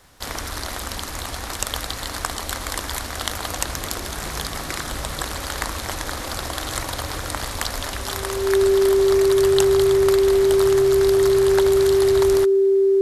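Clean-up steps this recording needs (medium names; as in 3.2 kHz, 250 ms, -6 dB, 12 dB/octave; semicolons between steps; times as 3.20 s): de-click; band-stop 390 Hz, Q 30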